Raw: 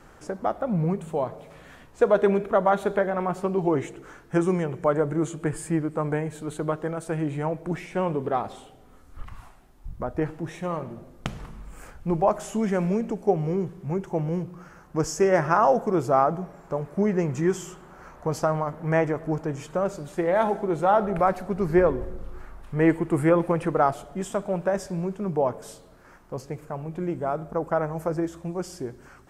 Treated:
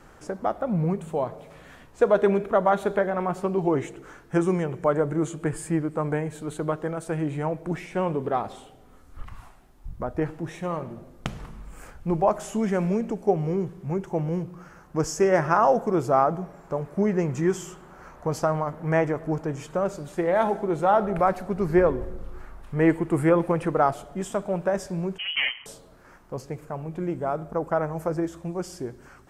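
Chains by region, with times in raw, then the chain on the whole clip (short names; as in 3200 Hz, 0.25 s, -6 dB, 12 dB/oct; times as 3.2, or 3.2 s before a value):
25.18–25.66 minimum comb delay 0.98 ms + inverted band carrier 3100 Hz
whole clip: dry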